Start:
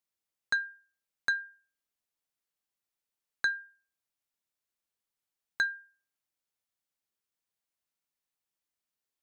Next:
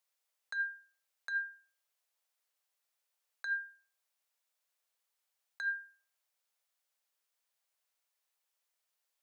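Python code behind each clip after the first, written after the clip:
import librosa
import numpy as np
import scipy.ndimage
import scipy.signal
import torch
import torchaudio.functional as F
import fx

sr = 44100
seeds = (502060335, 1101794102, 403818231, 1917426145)

y = scipy.signal.sosfilt(scipy.signal.butter(6, 470.0, 'highpass', fs=sr, output='sos'), x)
y = fx.over_compress(y, sr, threshold_db=-35.0, ratio=-1.0)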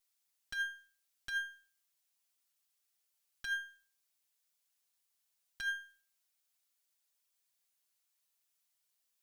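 y = fx.lower_of_two(x, sr, delay_ms=6.8)
y = fx.high_shelf(y, sr, hz=2400.0, db=10.5)
y = y * 10.0 ** (-4.5 / 20.0)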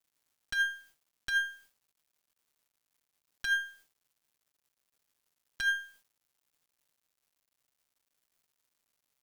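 y = fx.quant_dither(x, sr, seeds[0], bits=12, dither='none')
y = y * 10.0 ** (7.5 / 20.0)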